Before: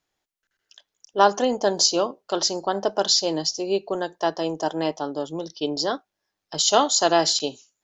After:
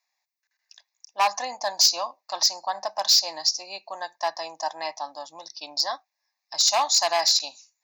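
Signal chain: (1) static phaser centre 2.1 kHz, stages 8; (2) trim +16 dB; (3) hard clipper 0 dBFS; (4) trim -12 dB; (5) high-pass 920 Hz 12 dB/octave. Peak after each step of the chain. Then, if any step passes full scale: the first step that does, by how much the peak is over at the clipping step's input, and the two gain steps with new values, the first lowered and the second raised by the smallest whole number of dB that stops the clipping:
-7.0 dBFS, +9.0 dBFS, 0.0 dBFS, -12.0 dBFS, -8.5 dBFS; step 2, 9.0 dB; step 2 +7 dB, step 4 -3 dB

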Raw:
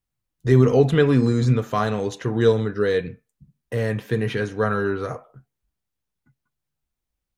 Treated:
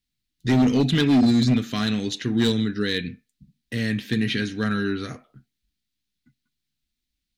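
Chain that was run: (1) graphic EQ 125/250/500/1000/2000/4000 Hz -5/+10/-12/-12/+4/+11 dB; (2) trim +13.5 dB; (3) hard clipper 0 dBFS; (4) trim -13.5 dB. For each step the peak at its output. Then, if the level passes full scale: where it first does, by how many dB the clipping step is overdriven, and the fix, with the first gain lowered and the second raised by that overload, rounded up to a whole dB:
-5.0 dBFS, +8.5 dBFS, 0.0 dBFS, -13.5 dBFS; step 2, 8.5 dB; step 2 +4.5 dB, step 4 -4.5 dB

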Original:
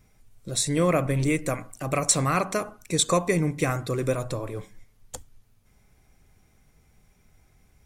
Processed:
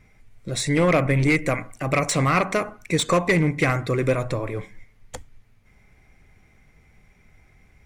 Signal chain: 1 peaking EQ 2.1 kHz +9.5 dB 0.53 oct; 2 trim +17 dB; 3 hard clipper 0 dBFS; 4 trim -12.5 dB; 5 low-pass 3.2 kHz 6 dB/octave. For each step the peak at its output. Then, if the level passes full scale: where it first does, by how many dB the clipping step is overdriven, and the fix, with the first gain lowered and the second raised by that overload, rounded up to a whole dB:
-7.0 dBFS, +10.0 dBFS, 0.0 dBFS, -12.5 dBFS, -12.5 dBFS; step 2, 10.0 dB; step 2 +7 dB, step 4 -2.5 dB

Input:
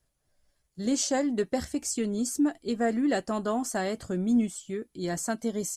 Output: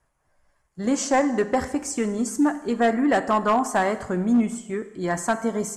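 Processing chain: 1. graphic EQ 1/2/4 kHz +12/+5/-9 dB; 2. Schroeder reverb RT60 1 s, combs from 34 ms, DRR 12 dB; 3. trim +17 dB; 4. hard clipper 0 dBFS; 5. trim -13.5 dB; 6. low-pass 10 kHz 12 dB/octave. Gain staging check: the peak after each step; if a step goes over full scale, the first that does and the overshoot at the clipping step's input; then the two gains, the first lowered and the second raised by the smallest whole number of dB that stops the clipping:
-11.0 dBFS, -10.5 dBFS, +6.5 dBFS, 0.0 dBFS, -13.5 dBFS, -13.0 dBFS; step 3, 6.5 dB; step 3 +10 dB, step 5 -6.5 dB

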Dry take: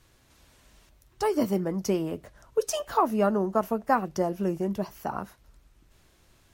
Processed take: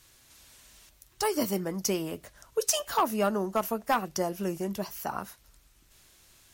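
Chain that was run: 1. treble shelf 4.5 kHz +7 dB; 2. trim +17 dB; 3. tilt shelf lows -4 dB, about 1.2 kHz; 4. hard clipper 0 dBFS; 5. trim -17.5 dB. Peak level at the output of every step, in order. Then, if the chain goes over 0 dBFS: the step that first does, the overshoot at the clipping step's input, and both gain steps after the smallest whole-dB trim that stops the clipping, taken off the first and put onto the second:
-9.0 dBFS, +8.0 dBFS, +9.5 dBFS, 0.0 dBFS, -17.5 dBFS; step 2, 9.5 dB; step 2 +7 dB, step 5 -7.5 dB

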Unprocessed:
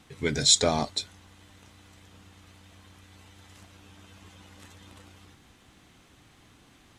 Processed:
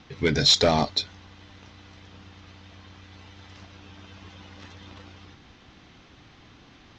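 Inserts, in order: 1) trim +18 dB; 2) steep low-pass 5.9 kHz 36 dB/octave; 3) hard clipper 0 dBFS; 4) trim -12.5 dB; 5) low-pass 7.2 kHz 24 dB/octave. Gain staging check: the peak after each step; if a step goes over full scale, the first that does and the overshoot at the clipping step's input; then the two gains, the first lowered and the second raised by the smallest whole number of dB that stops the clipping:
+12.5 dBFS, +10.0 dBFS, 0.0 dBFS, -12.5 dBFS, -10.5 dBFS; step 1, 10.0 dB; step 1 +8 dB, step 4 -2.5 dB

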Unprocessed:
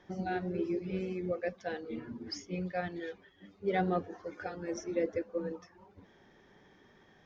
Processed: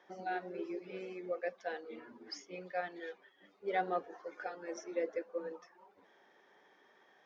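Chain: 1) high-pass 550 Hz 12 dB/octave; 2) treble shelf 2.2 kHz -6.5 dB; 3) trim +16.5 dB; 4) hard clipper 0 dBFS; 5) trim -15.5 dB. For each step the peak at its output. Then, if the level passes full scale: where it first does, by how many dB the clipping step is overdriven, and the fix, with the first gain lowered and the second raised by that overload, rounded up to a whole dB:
-20.5 dBFS, -22.0 dBFS, -5.5 dBFS, -5.5 dBFS, -21.0 dBFS; nothing clips

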